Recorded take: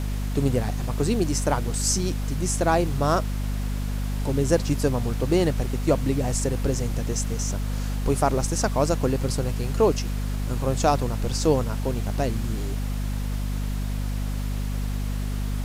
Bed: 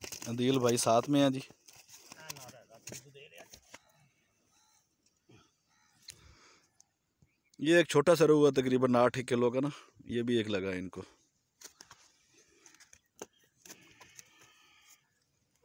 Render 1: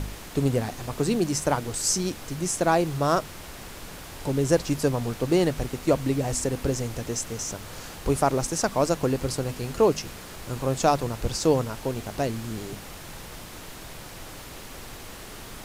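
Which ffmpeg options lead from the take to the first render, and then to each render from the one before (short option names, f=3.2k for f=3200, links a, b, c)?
-af "bandreject=f=50:t=h:w=4,bandreject=f=100:t=h:w=4,bandreject=f=150:t=h:w=4,bandreject=f=200:t=h:w=4,bandreject=f=250:t=h:w=4"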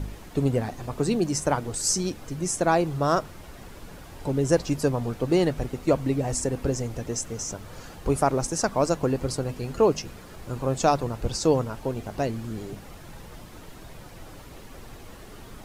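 -af "afftdn=nr=9:nf=-41"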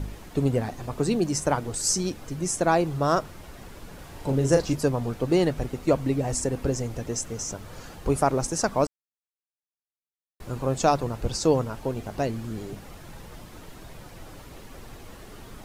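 -filter_complex "[0:a]asettb=1/sr,asplit=3[a][b][c];[a]atrim=end=3.954[d];[b]atrim=start=3.95:end=4.75,asetpts=PTS-STARTPTS,afade=t=in:d=0.004:c=qsin,afade=t=out:st=0.796:d=0.004:c=qsin,asplit=2[e][f];[f]adelay=37,volume=-5.5dB[g];[e][g]amix=inputs=2:normalize=0,atrim=end_sample=35280[h];[c]atrim=start=4.746[i];[d][h]acrossfade=d=0.004:c1=hsin:c2=qsin[j];[j][i]acrossfade=d=0.004:c1=qsin:c2=hsin,asplit=3[k][l][m];[k]atrim=end=8.87,asetpts=PTS-STARTPTS,afade=t=out:st=8.866:d=0.004:c=hsin[n];[l]atrim=start=8.87:end=10.4,asetpts=PTS-STARTPTS,volume=0[o];[m]atrim=start=10.4,asetpts=PTS-STARTPTS,afade=t=in:d=0.004:c=hsin[p];[n][o][p]concat=n=3:v=0:a=1"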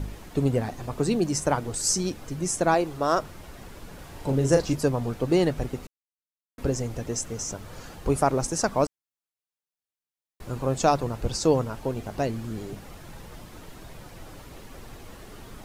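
-filter_complex "[0:a]asettb=1/sr,asplit=3[a][b][c];[a]atrim=end=2.744[d];[b]atrim=start=2.74:end=3.2,asetpts=PTS-STARTPTS,afade=t=in:d=0.004:c=qsin,afade=t=out:st=0.456:d=0.004:c=qsin,equalizer=f=140:w=1.5:g=-10.5[e];[c]atrim=start=3.196[f];[d][e]acrossfade=d=0.004:c1=hsin:c2=qsin[g];[g][f]acrossfade=d=0.004:c1=qsin:c2=hsin,asplit=3[h][i][j];[h]atrim=end=5.87,asetpts=PTS-STARTPTS,afade=t=out:st=5.866:d=0.004:c=hsin[k];[i]atrim=start=5.87:end=6.58,asetpts=PTS-STARTPTS,volume=0[l];[j]atrim=start=6.58,asetpts=PTS-STARTPTS,afade=t=in:d=0.004:c=hsin[m];[k][l][m]concat=n=3:v=0:a=1"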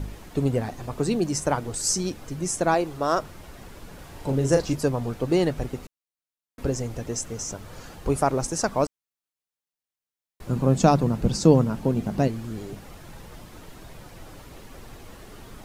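-filter_complex "[0:a]asettb=1/sr,asplit=3[a][b][c];[a]atrim=end=10.494[d];[b]atrim=start=10.49:end=12.28,asetpts=PTS-STARTPTS,afade=t=in:d=0.004:c=qsin,afade=t=out:st=1.786:d=0.004:c=qsin,equalizer=f=190:t=o:w=1.2:g=14[e];[c]atrim=start=12.276[f];[d][e]acrossfade=d=0.004:c1=hsin:c2=qsin[g];[g][f]acrossfade=d=0.004:c1=qsin:c2=hsin"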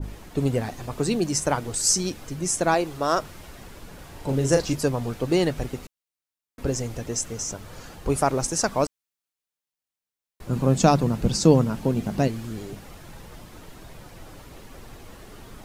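-af "adynamicequalizer=threshold=0.0112:dfrequency=1600:dqfactor=0.7:tfrequency=1600:tqfactor=0.7:attack=5:release=100:ratio=0.375:range=2:mode=boostabove:tftype=highshelf"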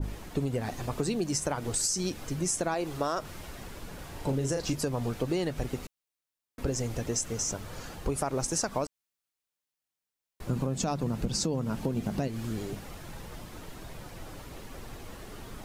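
-af "alimiter=limit=-13.5dB:level=0:latency=1:release=129,acompressor=threshold=-26dB:ratio=6"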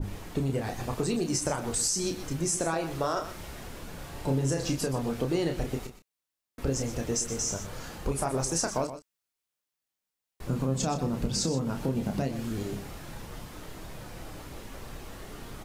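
-filter_complex "[0:a]asplit=2[a][b];[b]adelay=30,volume=-6dB[c];[a][c]amix=inputs=2:normalize=0,aecho=1:1:123:0.266"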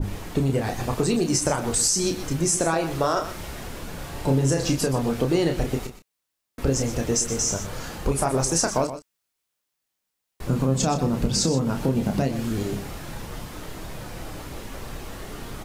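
-af "volume=6.5dB"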